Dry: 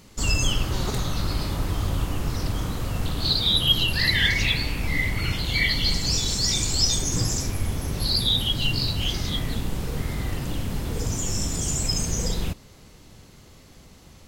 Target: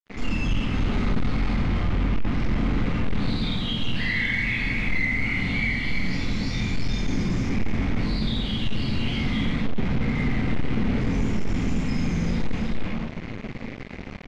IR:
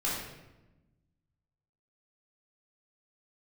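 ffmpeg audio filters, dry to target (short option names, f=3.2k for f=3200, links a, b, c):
-filter_complex "[0:a]equalizer=f=2.2k:w=3.5:g=13,bandreject=f=50:t=h:w=6,bandreject=f=100:t=h:w=6,bandreject=f=150:t=h:w=6,asplit=2[a][b];[b]aecho=0:1:314:0.316[c];[a][c]amix=inputs=2:normalize=0,acompressor=threshold=-32dB:ratio=4,equalizer=f=230:w=2.9:g=13.5,asplit=2[d][e];[e]adelay=48,volume=-6.5dB[f];[d][f]amix=inputs=2:normalize=0[g];[1:a]atrim=start_sample=2205[h];[g][h]afir=irnorm=-1:irlink=0,aresample=16000,asoftclip=type=tanh:threshold=-15.5dB,aresample=44100,acrusher=bits=4:mix=0:aa=0.5,lowpass=2.9k"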